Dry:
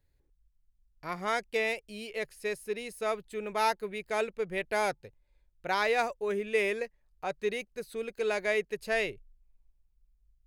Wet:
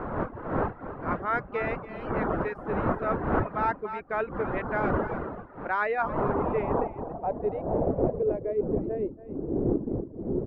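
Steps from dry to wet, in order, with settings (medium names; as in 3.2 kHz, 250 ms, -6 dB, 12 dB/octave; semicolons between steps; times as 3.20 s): wind noise 540 Hz -28 dBFS; on a send: delay 280 ms -12.5 dB; on the sum: low-pass sweep 1.4 kHz -> 360 Hz, 5.90–9.01 s; reverb removal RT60 0.54 s; reverse; compression 6:1, threshold -22 dBFS, peak gain reduction 10 dB; reverse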